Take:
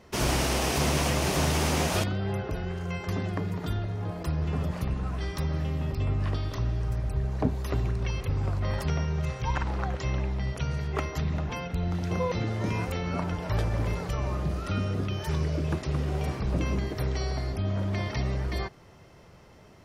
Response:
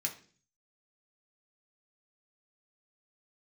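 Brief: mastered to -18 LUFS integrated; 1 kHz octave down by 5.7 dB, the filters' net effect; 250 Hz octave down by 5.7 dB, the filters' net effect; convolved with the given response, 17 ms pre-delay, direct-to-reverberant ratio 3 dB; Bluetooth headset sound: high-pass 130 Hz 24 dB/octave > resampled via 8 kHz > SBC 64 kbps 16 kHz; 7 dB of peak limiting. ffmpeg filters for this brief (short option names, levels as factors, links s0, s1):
-filter_complex "[0:a]equalizer=f=250:t=o:g=-8.5,equalizer=f=1000:t=o:g=-7,alimiter=limit=0.0891:level=0:latency=1,asplit=2[s0][s1];[1:a]atrim=start_sample=2205,adelay=17[s2];[s1][s2]afir=irnorm=-1:irlink=0,volume=0.562[s3];[s0][s3]amix=inputs=2:normalize=0,highpass=f=130:w=0.5412,highpass=f=130:w=1.3066,aresample=8000,aresample=44100,volume=7.08" -ar 16000 -c:a sbc -b:a 64k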